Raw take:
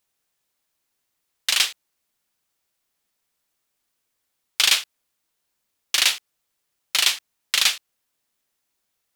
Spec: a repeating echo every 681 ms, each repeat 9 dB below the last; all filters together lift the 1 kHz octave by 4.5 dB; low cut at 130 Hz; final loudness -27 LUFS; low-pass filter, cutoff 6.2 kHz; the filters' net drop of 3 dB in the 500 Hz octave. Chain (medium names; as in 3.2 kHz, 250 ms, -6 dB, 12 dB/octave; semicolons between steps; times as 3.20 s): high-pass 130 Hz; low-pass 6.2 kHz; peaking EQ 500 Hz -7.5 dB; peaking EQ 1 kHz +7.5 dB; feedback delay 681 ms, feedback 35%, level -9 dB; trim -4.5 dB